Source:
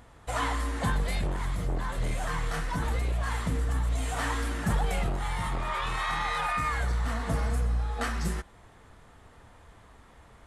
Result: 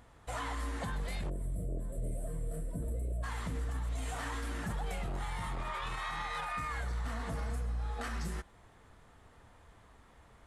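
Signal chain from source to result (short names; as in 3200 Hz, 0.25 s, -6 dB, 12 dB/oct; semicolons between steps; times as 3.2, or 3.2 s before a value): spectral gain 1.29–3.23, 700–7400 Hz -23 dB; limiter -23.5 dBFS, peak gain reduction 7.5 dB; gain -5.5 dB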